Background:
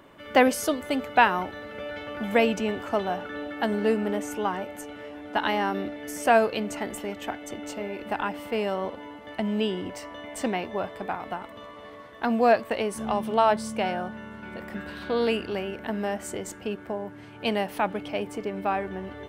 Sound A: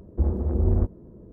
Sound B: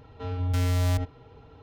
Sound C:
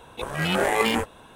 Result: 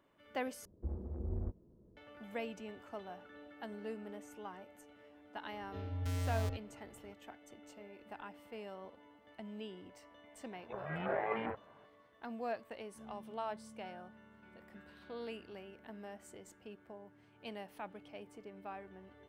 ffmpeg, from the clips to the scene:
-filter_complex "[0:a]volume=-20dB[a];[3:a]highpass=100,equalizer=f=120:t=q:w=4:g=6,equalizer=f=260:t=q:w=4:g=-4,equalizer=f=640:t=q:w=4:g=7,lowpass=f=2.1k:w=0.5412,lowpass=f=2.1k:w=1.3066[b];[a]asplit=2[c][d];[c]atrim=end=0.654[e];[1:a]atrim=end=1.32,asetpts=PTS-STARTPTS,volume=-17.5dB[f];[d]atrim=start=1.966[g];[2:a]atrim=end=1.62,asetpts=PTS-STARTPTS,volume=-12dB,afade=t=in:d=0.004:c=hsin,afade=t=out:st=1.616:d=0.004:c=hsin,adelay=5520[h];[b]atrim=end=1.35,asetpts=PTS-STARTPTS,volume=-15dB,afade=t=in:d=0.004:c=hsin,afade=t=out:st=1.346:d=0.004:c=hsin,adelay=10510[i];[e][f]acrossfade=d=0.004:c1=hsin:c2=hsin[j];[j][g]acrossfade=d=0.004:c1=hsin:c2=hsin[k];[k][h][i]amix=inputs=3:normalize=0"

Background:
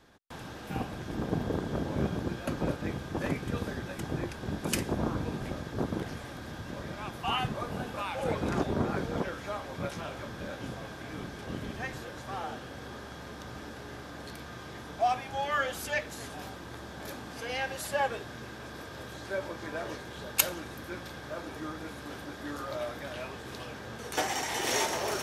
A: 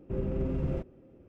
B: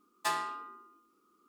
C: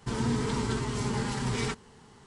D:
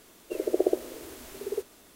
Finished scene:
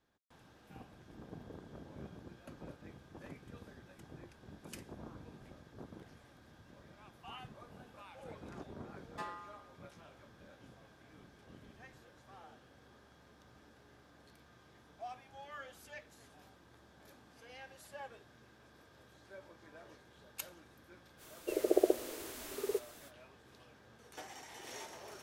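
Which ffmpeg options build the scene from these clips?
-filter_complex "[0:a]volume=-19dB[a];[2:a]lowpass=f=1.7k:p=1[b];[4:a]lowshelf=f=410:g=-6.5[c];[b]atrim=end=1.48,asetpts=PTS-STARTPTS,volume=-10dB,afade=t=in:d=0.004:c=hsin,afade=t=out:st=1.476:d=0.004:c=hsin,adelay=8930[d];[c]atrim=end=1.95,asetpts=PTS-STARTPTS,volume=-0.5dB,afade=t=in:d=0.05,afade=t=out:st=1.9:d=0.05,adelay=21170[e];[a][d][e]amix=inputs=3:normalize=0"

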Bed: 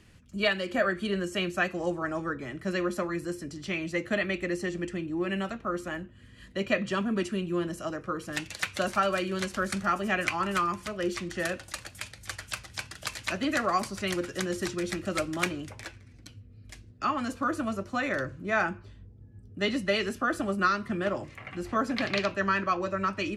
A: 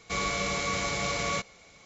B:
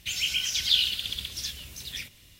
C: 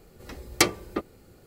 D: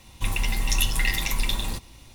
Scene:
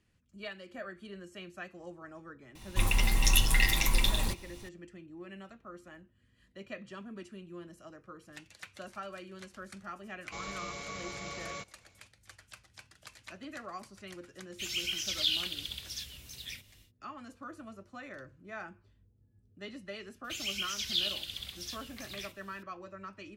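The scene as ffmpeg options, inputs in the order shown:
-filter_complex "[2:a]asplit=2[a][b];[0:a]volume=-16.5dB[c];[4:a]atrim=end=2.14,asetpts=PTS-STARTPTS,volume=-1.5dB,afade=t=in:d=0.004:c=hsin,afade=t=out:st=2.136:d=0.004:c=hsin,adelay=2550[d];[1:a]atrim=end=1.85,asetpts=PTS-STARTPTS,volume=-12dB,afade=t=in:d=0.004:c=hsin,afade=t=out:st=1.846:d=0.004:c=hsin,adelay=10220[e];[a]atrim=end=2.39,asetpts=PTS-STARTPTS,volume=-7dB,afade=t=in:d=0.1,afade=t=out:st=2.29:d=0.1,adelay=14530[f];[b]atrim=end=2.39,asetpts=PTS-STARTPTS,volume=-8.5dB,afade=t=in:d=0.004:c=hsin,afade=t=out:st=2.386:d=0.004:c=hsin,adelay=20240[g];[c][d][e][f][g]amix=inputs=5:normalize=0"

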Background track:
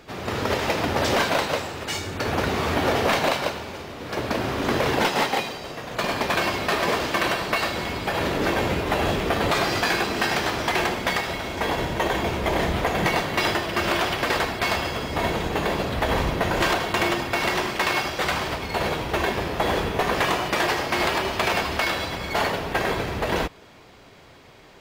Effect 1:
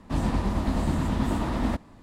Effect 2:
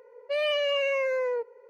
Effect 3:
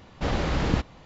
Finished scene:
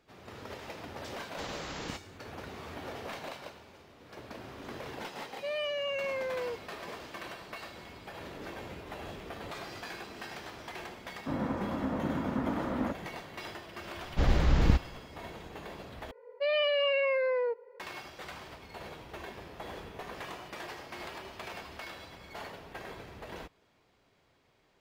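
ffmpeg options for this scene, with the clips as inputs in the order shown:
-filter_complex "[3:a]asplit=2[a][b];[2:a]asplit=2[c][d];[0:a]volume=-20dB[e];[a]aemphasis=mode=production:type=bsi[f];[1:a]highpass=140,equalizer=f=280:t=q:w=4:g=4,equalizer=f=530:t=q:w=4:g=8,equalizer=f=1.4k:t=q:w=4:g=6,lowpass=f=2.2k:w=0.5412,lowpass=f=2.2k:w=1.3066[g];[b]lowshelf=f=100:g=11.5[h];[d]aresample=11025,aresample=44100[i];[e]asplit=2[j][k];[j]atrim=end=16.114[l];[i]atrim=end=1.69,asetpts=PTS-STARTPTS,volume=-1.5dB[m];[k]atrim=start=17.796[n];[f]atrim=end=1.05,asetpts=PTS-STARTPTS,volume=-11dB,afade=t=in:d=0.004:c=hsin,afade=t=out:st=1.046:d=0.004:c=hsin,adelay=1160[o];[c]atrim=end=1.69,asetpts=PTS-STARTPTS,volume=-7.5dB,afade=t=in:d=0.004:c=hsin,afade=t=out:st=1.686:d=0.004:c=hsin,adelay=226233S[p];[g]atrim=end=2.02,asetpts=PTS-STARTPTS,volume=-6.5dB,afade=t=in:d=0.004:c=hsin,afade=t=out:st=2.016:d=0.004:c=hsin,adelay=11160[q];[h]atrim=end=1.05,asetpts=PTS-STARTPTS,volume=-5dB,afade=t=in:d=0.004:c=hsin,afade=t=out:st=1.046:d=0.004:c=hsin,adelay=615636S[r];[l][m]acrossfade=d=0.004:c1=hsin:c2=hsin[s];[s][n]acrossfade=d=0.004:c1=hsin:c2=hsin[t];[t][o][p][q][r]amix=inputs=5:normalize=0"

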